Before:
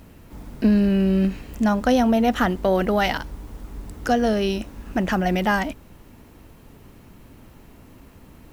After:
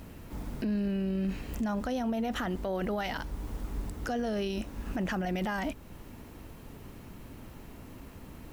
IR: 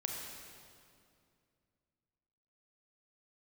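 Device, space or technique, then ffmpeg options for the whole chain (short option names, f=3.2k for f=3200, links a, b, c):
stacked limiters: -af "alimiter=limit=-13.5dB:level=0:latency=1:release=77,alimiter=limit=-20dB:level=0:latency=1:release=13,alimiter=level_in=0.5dB:limit=-24dB:level=0:latency=1:release=267,volume=-0.5dB"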